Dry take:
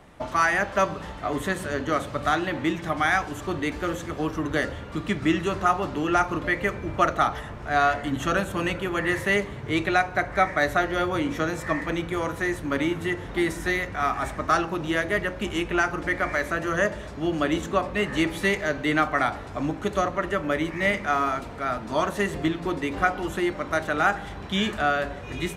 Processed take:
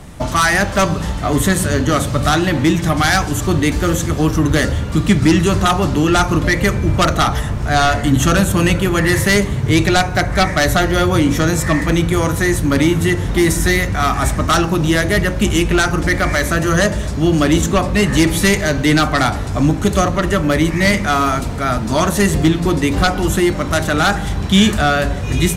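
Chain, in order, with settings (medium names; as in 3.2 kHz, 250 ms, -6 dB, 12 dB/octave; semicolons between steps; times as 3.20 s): sine folder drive 7 dB, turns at -7.5 dBFS; tone controls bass +11 dB, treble +12 dB; trim -2 dB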